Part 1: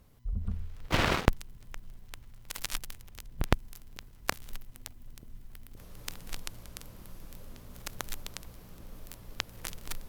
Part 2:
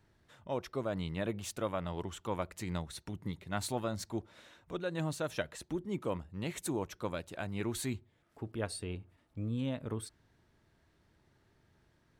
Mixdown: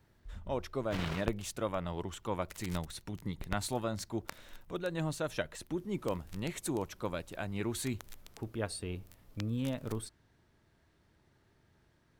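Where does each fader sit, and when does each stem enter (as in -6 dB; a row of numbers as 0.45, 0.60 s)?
-13.0, +0.5 dB; 0.00, 0.00 s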